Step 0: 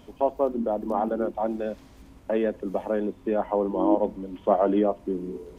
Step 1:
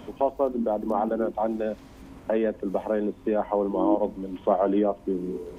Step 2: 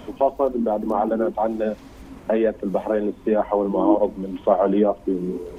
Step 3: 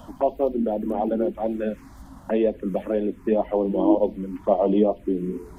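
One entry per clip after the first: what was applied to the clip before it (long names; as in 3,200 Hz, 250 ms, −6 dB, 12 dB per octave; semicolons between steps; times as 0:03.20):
multiband upward and downward compressor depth 40%
flanger 2 Hz, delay 1.3 ms, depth 4.7 ms, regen +56%; level +8.5 dB
phaser swept by the level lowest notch 360 Hz, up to 1,500 Hz, full sweep at −15.5 dBFS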